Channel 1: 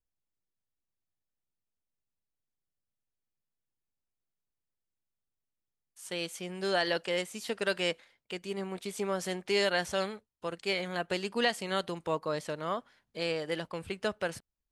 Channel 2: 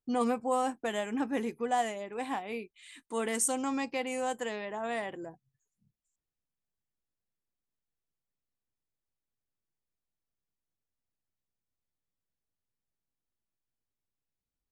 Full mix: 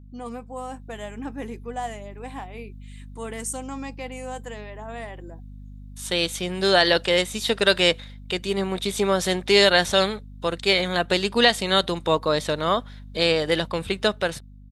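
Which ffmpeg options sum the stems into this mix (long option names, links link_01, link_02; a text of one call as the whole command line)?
ffmpeg -i stem1.wav -i stem2.wav -filter_complex "[0:a]equalizer=frequency=3700:width=7.8:gain=13.5,dynaudnorm=framelen=320:gausssize=3:maxgain=7dB,aeval=exprs='val(0)+0.00631*(sin(2*PI*50*n/s)+sin(2*PI*2*50*n/s)/2+sin(2*PI*3*50*n/s)/3+sin(2*PI*4*50*n/s)/4+sin(2*PI*5*50*n/s)/5)':channel_layout=same,volume=0dB[link_01];[1:a]adelay=50,volume=-6.5dB[link_02];[link_01][link_02]amix=inputs=2:normalize=0,dynaudnorm=framelen=150:gausssize=11:maxgain=5dB" out.wav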